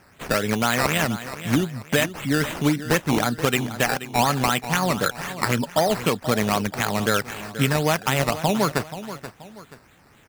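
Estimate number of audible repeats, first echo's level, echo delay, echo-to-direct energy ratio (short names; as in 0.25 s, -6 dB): 2, -13.0 dB, 0.48 s, -12.5 dB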